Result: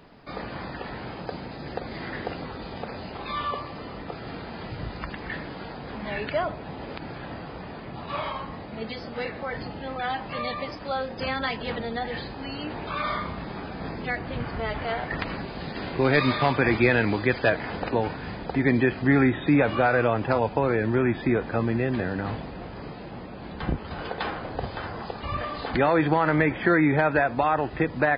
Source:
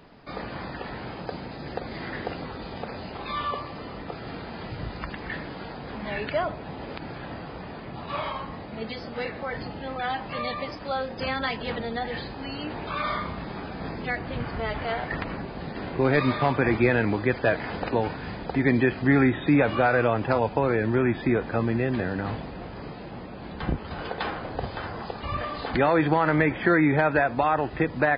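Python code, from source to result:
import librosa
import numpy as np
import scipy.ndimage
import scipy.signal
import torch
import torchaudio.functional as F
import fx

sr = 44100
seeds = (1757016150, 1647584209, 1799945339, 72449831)

y = fx.high_shelf(x, sr, hz=2800.0, db=9.5, at=(15.19, 17.5))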